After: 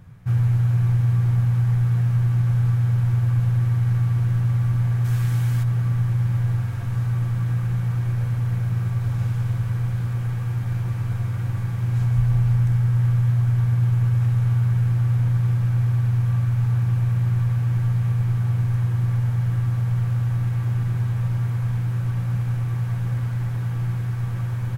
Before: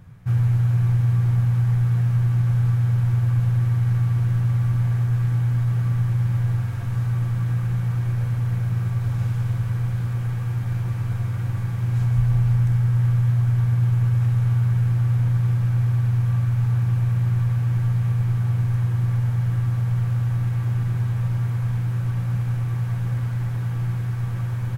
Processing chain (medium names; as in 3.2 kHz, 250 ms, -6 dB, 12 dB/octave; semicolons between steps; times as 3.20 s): 5.04–5.62 s: treble shelf 2.4 kHz -> 2.5 kHz +11 dB